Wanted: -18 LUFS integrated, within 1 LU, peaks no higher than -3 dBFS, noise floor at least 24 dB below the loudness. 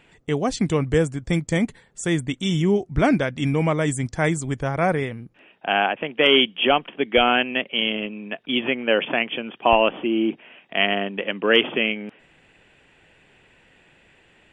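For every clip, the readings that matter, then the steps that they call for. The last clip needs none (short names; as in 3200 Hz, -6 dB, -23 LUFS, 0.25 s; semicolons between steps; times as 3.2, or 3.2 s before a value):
loudness -21.5 LUFS; peak -2.0 dBFS; loudness target -18.0 LUFS
-> gain +3.5 dB; limiter -3 dBFS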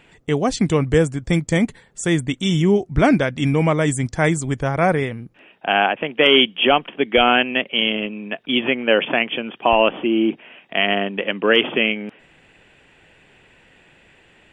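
loudness -18.5 LUFS; peak -3.0 dBFS; noise floor -54 dBFS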